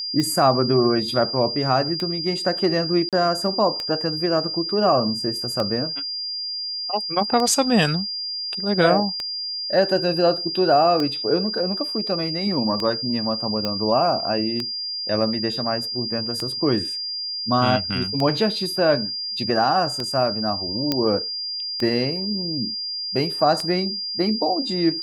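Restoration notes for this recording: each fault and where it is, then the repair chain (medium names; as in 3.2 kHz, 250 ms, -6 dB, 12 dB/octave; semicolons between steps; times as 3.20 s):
tick 33 1/3 rpm -12 dBFS
whine 4.8 kHz -26 dBFS
3.09–3.13 s: dropout 37 ms
13.65 s: pop -11 dBFS
20.92 s: pop -6 dBFS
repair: de-click; band-stop 4.8 kHz, Q 30; interpolate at 3.09 s, 37 ms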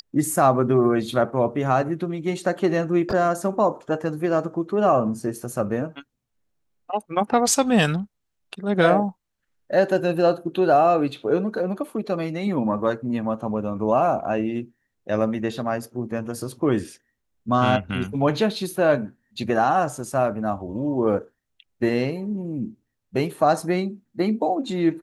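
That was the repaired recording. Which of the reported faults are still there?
20.92 s: pop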